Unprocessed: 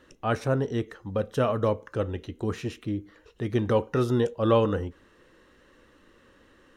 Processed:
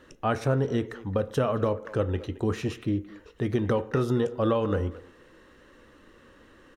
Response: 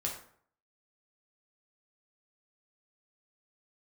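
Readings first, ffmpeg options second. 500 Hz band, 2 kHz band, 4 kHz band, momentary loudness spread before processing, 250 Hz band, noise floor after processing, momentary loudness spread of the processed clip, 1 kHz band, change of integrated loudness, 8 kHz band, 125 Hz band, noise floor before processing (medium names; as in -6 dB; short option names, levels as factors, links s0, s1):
-1.0 dB, 0.0 dB, -1.5 dB, 11 LU, +0.5 dB, -56 dBFS, 6 LU, -1.0 dB, -0.5 dB, no reading, +0.5 dB, -59 dBFS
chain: -filter_complex "[0:a]acompressor=threshold=0.0631:ratio=10,asplit=2[s0][s1];[s1]adelay=220,highpass=300,lowpass=3400,asoftclip=type=hard:threshold=0.0562,volume=0.158[s2];[s0][s2]amix=inputs=2:normalize=0,asplit=2[s3][s4];[1:a]atrim=start_sample=2205,lowpass=2700[s5];[s4][s5]afir=irnorm=-1:irlink=0,volume=0.2[s6];[s3][s6]amix=inputs=2:normalize=0,volume=1.26"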